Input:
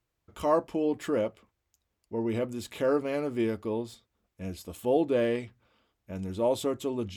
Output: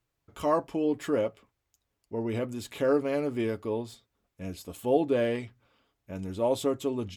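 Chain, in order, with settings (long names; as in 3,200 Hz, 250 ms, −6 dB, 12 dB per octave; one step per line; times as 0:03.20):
comb filter 7.2 ms, depth 31%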